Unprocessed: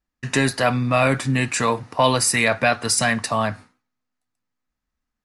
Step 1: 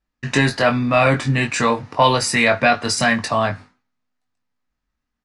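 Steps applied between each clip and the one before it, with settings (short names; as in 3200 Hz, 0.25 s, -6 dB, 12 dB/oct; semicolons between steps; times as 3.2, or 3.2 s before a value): LPF 6000 Hz 12 dB/oct; doubler 21 ms -5.5 dB; gain +2 dB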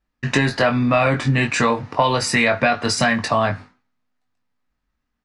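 high shelf 6800 Hz -9 dB; compressor, threshold -16 dBFS, peak gain reduction 7 dB; gain +3 dB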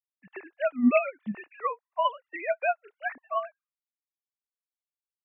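sine-wave speech; upward expander 2.5:1, over -36 dBFS; gain -5.5 dB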